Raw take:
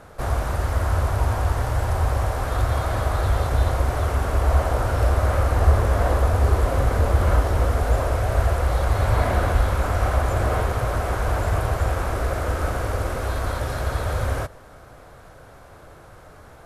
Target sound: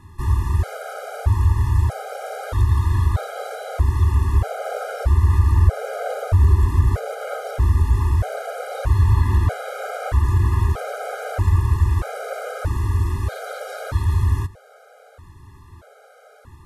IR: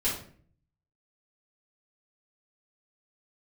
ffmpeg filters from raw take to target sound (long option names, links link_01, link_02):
-filter_complex "[0:a]equalizer=frequency=87:width=1.9:gain=10.5,asplit=2[link_01][link_02];[link_02]alimiter=limit=-8dB:level=0:latency=1:release=126,volume=2dB[link_03];[link_01][link_03]amix=inputs=2:normalize=0,afftfilt=real='re*gt(sin(2*PI*0.79*pts/sr)*(1-2*mod(floor(b*sr/1024/410),2)),0)':imag='im*gt(sin(2*PI*0.79*pts/sr)*(1-2*mod(floor(b*sr/1024/410),2)),0)':win_size=1024:overlap=0.75,volume=-7dB"